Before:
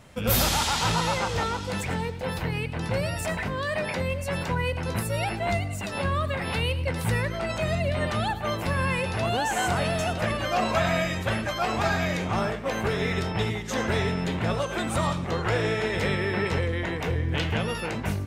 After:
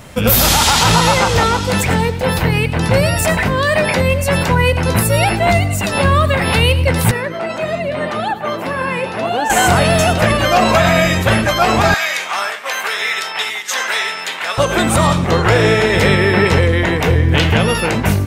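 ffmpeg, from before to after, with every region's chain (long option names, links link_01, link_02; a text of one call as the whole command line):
ffmpeg -i in.wav -filter_complex "[0:a]asettb=1/sr,asplit=3[link_01][link_02][link_03];[link_01]atrim=end=7.114[link_04];[link_02]atrim=start=7.11:end=9.5,asetpts=PTS-STARTPTS,afade=type=in:duration=0.004:curve=qsin,afade=type=out:start_time=2.386:duration=0.004:curve=qsin,highpass=220,highshelf=frequency=3500:gain=-11.5,flanger=delay=0.9:depth=7.3:regen=66:speed=1.8:shape=triangular[link_05];[link_03]atrim=start=9.496[link_06];[link_04][link_05]acrossfade=duration=0.004:curve1=hsin:curve2=qsin[link_07];[link_07][link_06]acrossfade=duration=0.004:curve1=qsin:curve2=hsin,asettb=1/sr,asplit=3[link_08][link_09][link_10];[link_08]atrim=end=11.944[link_11];[link_09]atrim=start=11.94:end=14.58,asetpts=PTS-STARTPTS,afade=type=in:duration=0.004:curve=qsin,afade=type=out:start_time=2.636:duration=0.004:curve=qsin,highpass=1200,asoftclip=type=hard:threshold=-18.5dB[link_12];[link_10]atrim=start=14.576[link_13];[link_11][link_12]acrossfade=duration=0.004:curve1=hsin:curve2=qsin[link_14];[link_14][link_13]acrossfade=duration=0.004:curve1=qsin:curve2=hsin,highshelf=frequency=12000:gain=8.5,alimiter=level_in=15dB:limit=-1dB:release=50:level=0:latency=1,volume=-1dB" out.wav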